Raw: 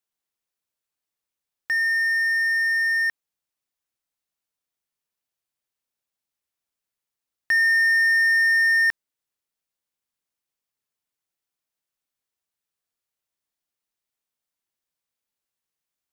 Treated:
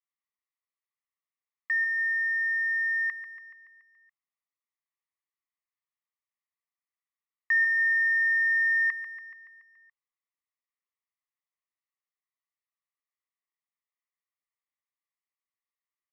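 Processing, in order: two resonant band-passes 1.5 kHz, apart 0.73 oct; feedback delay 142 ms, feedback 60%, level -10 dB

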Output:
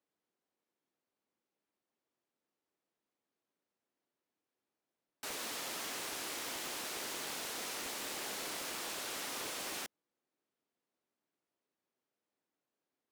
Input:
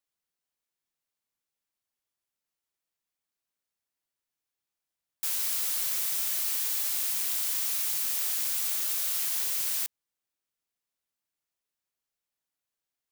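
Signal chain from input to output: band-pass filter 300 Hz, Q 1.2; tilt EQ +2 dB/octave; loudspeaker Doppler distortion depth 0.54 ms; trim +15.5 dB

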